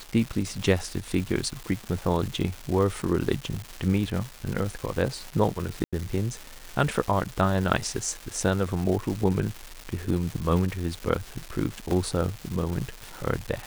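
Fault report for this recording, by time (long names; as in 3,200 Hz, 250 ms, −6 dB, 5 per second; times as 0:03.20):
surface crackle 530 per second −31 dBFS
0:05.84–0:05.93: drop-out 86 ms
0:11.91: drop-out 2 ms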